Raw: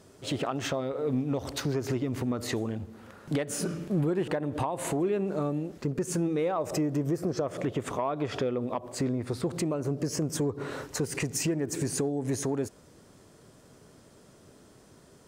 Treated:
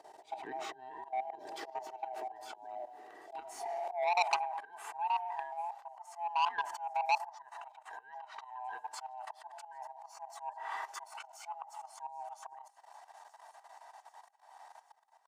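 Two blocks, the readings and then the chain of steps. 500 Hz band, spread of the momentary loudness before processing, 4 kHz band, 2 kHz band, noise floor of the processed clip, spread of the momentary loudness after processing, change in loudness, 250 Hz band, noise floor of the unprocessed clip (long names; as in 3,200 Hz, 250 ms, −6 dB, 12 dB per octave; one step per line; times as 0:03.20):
−14.0 dB, 5 LU, −7.0 dB, −2.0 dB, −65 dBFS, 23 LU, −8.5 dB, below −30 dB, −56 dBFS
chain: neighbouring bands swapped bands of 500 Hz
output level in coarse steps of 14 dB
high-shelf EQ 4,000 Hz −8 dB
delay with a high-pass on its return 789 ms, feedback 70%, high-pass 4,400 Hz, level −22.5 dB
volume swells 345 ms
comb filter 2.6 ms, depth 34%
high-pass filter sweep 370 Hz → 1,000 Hz, 0:03.59–0:04.55
hum removal 403.6 Hz, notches 2
saturating transformer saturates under 3,000 Hz
level +1 dB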